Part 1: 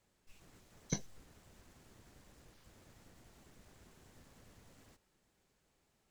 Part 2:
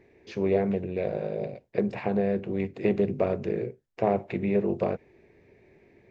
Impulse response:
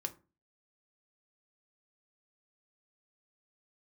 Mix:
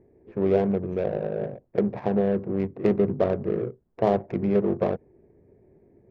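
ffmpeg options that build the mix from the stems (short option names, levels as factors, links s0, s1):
-filter_complex "[0:a]volume=0.299[s0];[1:a]lowpass=2200,volume=1.41[s1];[s0][s1]amix=inputs=2:normalize=0,adynamicsmooth=sensitivity=1.5:basefreq=700"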